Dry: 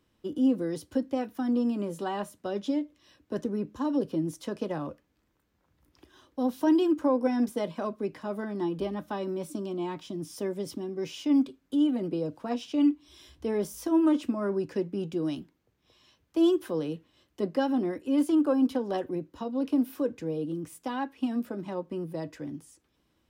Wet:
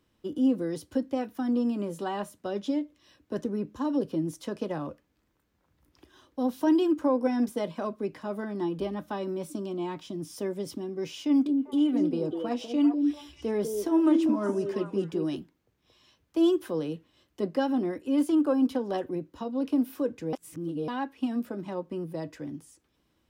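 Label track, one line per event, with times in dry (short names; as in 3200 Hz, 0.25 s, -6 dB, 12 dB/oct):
11.180000	15.360000	delay with a stepping band-pass 0.197 s, band-pass from 370 Hz, each repeat 1.4 oct, level -2 dB
20.330000	20.880000	reverse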